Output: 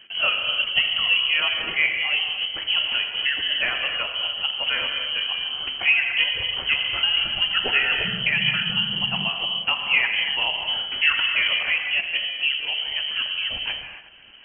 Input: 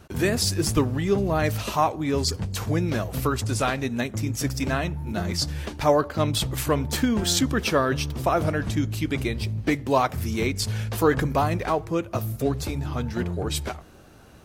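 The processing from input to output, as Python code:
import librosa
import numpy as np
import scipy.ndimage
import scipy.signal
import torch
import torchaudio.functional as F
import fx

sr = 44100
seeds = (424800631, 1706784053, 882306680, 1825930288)

p1 = fx.dereverb_blind(x, sr, rt60_s=0.64)
p2 = fx.rev_gated(p1, sr, seeds[0], gate_ms=320, shape='flat', drr_db=2.5)
p3 = fx.freq_invert(p2, sr, carrier_hz=3100)
p4 = fx.dmg_noise_band(p3, sr, seeds[1], low_hz=120.0, high_hz=210.0, level_db=-35.0, at=(8.03, 9.28), fade=0.02)
y = p4 + fx.echo_wet_lowpass(p4, sr, ms=366, feedback_pct=47, hz=1800.0, wet_db=-16.5, dry=0)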